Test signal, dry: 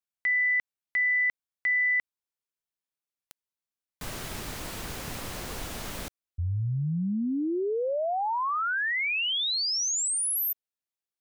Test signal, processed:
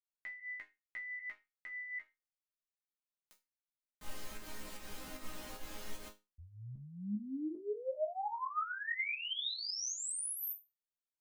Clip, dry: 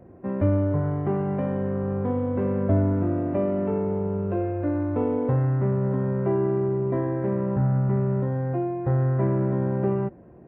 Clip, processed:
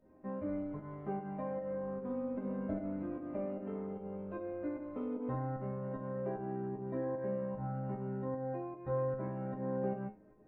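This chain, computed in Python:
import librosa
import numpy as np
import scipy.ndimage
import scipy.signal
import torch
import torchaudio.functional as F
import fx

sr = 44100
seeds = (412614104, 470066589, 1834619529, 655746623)

y = fx.chorus_voices(x, sr, voices=4, hz=0.23, base_ms=15, depth_ms=2.1, mix_pct=35)
y = fx.volume_shaper(y, sr, bpm=151, per_beat=1, depth_db=-11, release_ms=137.0, shape='fast start')
y = fx.resonator_bank(y, sr, root=56, chord='major', decay_s=0.24)
y = y * librosa.db_to_amplitude(7.5)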